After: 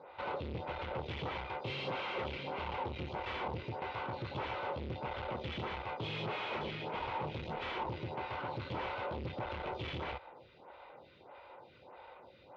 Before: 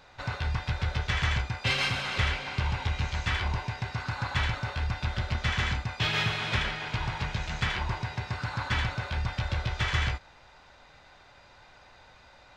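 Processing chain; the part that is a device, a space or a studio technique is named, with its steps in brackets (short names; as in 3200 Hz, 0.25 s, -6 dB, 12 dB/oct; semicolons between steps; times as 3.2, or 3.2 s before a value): vibe pedal into a guitar amplifier (photocell phaser 1.6 Hz; tube stage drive 41 dB, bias 0.65; speaker cabinet 92–3400 Hz, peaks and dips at 360 Hz +7 dB, 510 Hz +10 dB, 900 Hz +5 dB, 1700 Hz -9 dB); gain +4.5 dB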